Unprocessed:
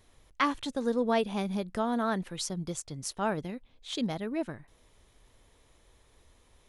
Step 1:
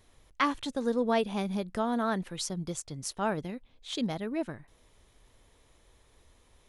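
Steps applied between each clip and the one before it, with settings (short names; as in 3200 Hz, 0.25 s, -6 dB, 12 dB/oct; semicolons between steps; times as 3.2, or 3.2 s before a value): nothing audible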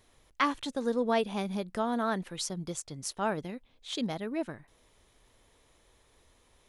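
low shelf 150 Hz -5.5 dB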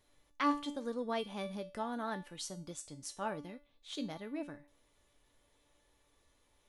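resonator 290 Hz, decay 0.36 s, harmonics all, mix 80%; gain +3.5 dB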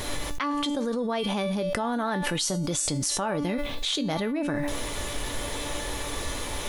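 fast leveller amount 100%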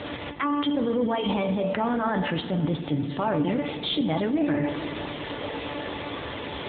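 in parallel at -8 dB: soft clip -21 dBFS, distortion -19 dB; on the sum: FDN reverb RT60 3.8 s, high-frequency decay 0.55×, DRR 7 dB; AMR-NB 7.95 kbps 8000 Hz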